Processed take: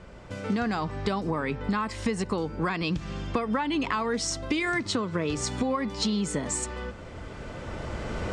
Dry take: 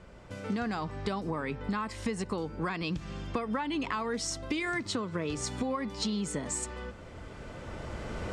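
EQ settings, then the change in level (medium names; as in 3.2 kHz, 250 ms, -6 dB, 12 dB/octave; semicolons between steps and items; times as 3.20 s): low-pass 9.6 kHz 12 dB/octave; +5.0 dB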